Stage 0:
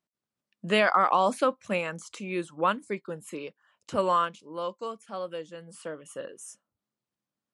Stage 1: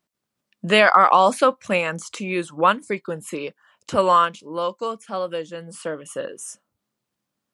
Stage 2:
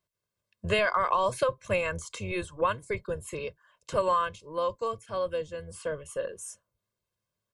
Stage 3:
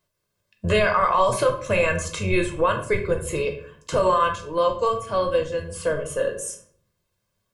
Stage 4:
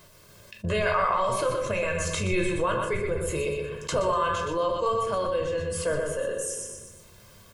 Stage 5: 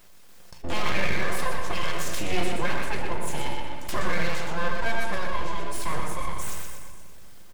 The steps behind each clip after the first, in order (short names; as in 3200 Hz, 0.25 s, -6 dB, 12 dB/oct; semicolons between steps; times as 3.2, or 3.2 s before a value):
dynamic EQ 250 Hz, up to -4 dB, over -36 dBFS, Q 0.75; gain +9 dB
octaver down 1 oct, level -3 dB; comb 1.9 ms, depth 76%; compressor 5:1, threshold -14 dBFS, peak gain reduction 7 dB; gain -8 dB
limiter -20.5 dBFS, peak gain reduction 7.5 dB; on a send at -3 dB: reverb RT60 0.55 s, pre-delay 6 ms; on the sum: gain +8 dB
random-step tremolo; feedback echo 0.122 s, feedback 29%, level -7 dB; fast leveller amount 50%; gain -5 dB
full-wave rectifier; echo 0.575 s -22 dB; shoebox room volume 3400 m³, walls mixed, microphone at 0.88 m